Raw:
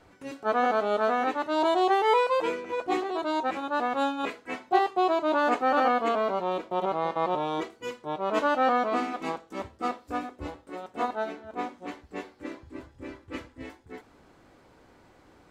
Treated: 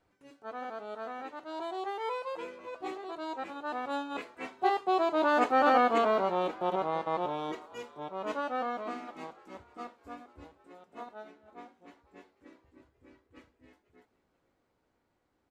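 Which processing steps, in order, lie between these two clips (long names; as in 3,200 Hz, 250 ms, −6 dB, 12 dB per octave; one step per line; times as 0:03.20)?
source passing by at 0:05.90, 7 m/s, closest 6.3 metres
echo with shifted repeats 491 ms, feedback 41%, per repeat +110 Hz, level −21.5 dB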